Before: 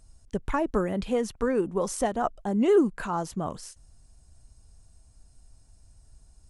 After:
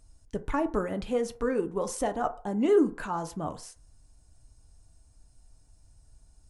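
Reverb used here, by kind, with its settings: FDN reverb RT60 0.42 s, low-frequency decay 0.7×, high-frequency decay 0.4×, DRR 7.5 dB; gain -3 dB

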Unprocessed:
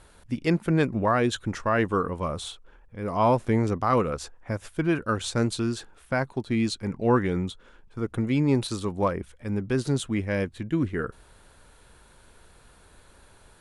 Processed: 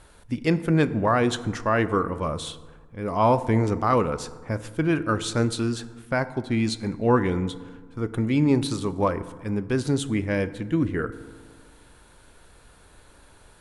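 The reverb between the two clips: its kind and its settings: FDN reverb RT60 1.5 s, low-frequency decay 1.2×, high-frequency decay 0.45×, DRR 12.5 dB; gain +1.5 dB

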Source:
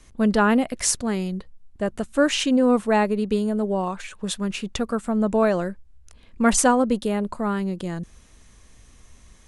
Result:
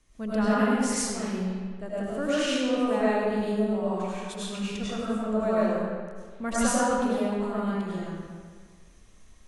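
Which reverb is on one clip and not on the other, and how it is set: digital reverb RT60 1.7 s, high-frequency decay 0.75×, pre-delay 60 ms, DRR -9.5 dB; gain -14.5 dB

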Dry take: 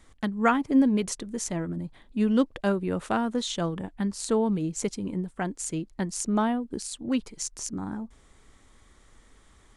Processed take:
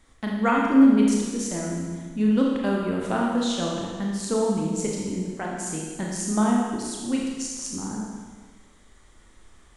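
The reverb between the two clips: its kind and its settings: Schroeder reverb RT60 1.5 s, combs from 26 ms, DRR -2.5 dB; gain -2 dB

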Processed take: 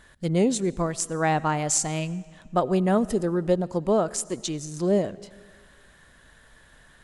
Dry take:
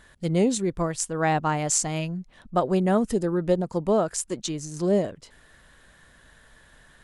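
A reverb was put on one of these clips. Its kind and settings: digital reverb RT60 1.7 s, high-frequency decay 0.9×, pre-delay 50 ms, DRR 20 dB

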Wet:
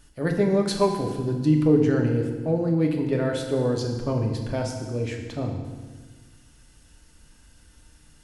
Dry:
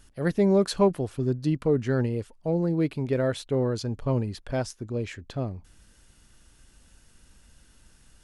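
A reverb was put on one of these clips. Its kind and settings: FDN reverb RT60 1.4 s, low-frequency decay 1.45×, high-frequency decay 0.95×, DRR 1.5 dB

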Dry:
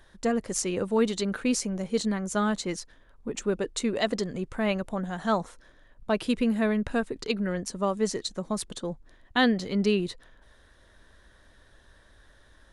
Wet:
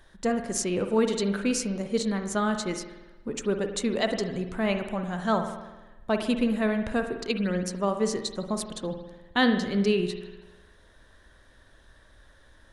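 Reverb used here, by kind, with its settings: spring tank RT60 1.1 s, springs 50 ms, chirp 30 ms, DRR 6.5 dB

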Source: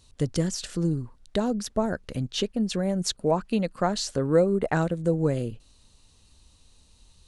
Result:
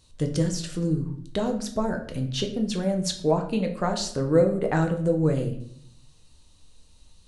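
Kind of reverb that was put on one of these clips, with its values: shoebox room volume 100 m³, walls mixed, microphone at 0.53 m; gain -1.5 dB

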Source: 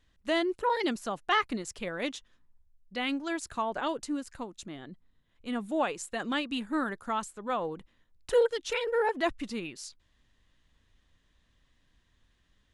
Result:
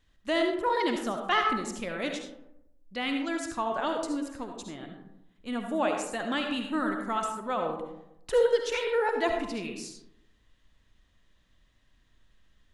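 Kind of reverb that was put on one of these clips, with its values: digital reverb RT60 0.84 s, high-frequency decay 0.4×, pre-delay 30 ms, DRR 3 dB

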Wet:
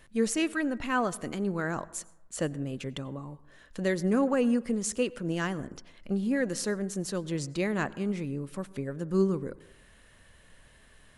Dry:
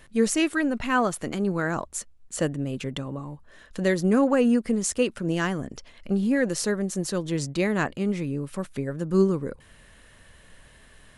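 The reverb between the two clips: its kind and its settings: plate-style reverb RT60 0.93 s, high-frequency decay 0.3×, pre-delay 80 ms, DRR 20 dB; gain -5 dB

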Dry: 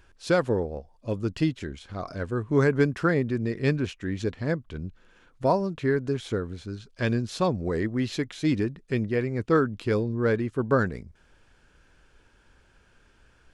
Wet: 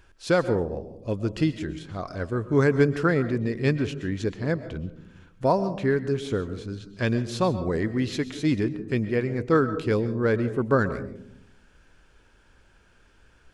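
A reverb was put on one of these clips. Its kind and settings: digital reverb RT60 0.68 s, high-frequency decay 0.25×, pre-delay 90 ms, DRR 12.5 dB; gain +1 dB

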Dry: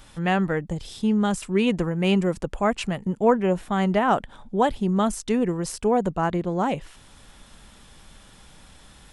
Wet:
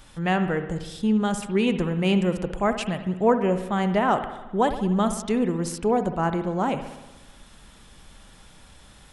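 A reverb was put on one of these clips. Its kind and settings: spring tank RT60 1.1 s, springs 60 ms, chirp 45 ms, DRR 9 dB; gain -1 dB

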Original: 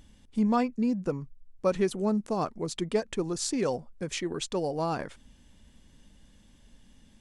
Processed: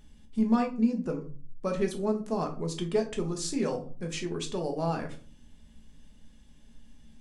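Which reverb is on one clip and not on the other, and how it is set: shoebox room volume 250 m³, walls furnished, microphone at 1.4 m; gain -4 dB

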